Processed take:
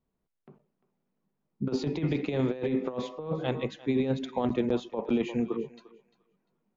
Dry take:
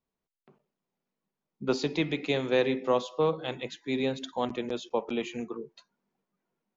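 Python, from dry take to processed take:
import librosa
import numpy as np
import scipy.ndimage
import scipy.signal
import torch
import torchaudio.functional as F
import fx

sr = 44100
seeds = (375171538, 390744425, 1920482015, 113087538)

y = fx.high_shelf(x, sr, hz=3100.0, db=-11.5)
y = fx.echo_thinned(y, sr, ms=348, feedback_pct=20, hz=570.0, wet_db=-17)
y = fx.over_compress(y, sr, threshold_db=-30.0, ratio=-0.5)
y = fx.low_shelf(y, sr, hz=300.0, db=8.0)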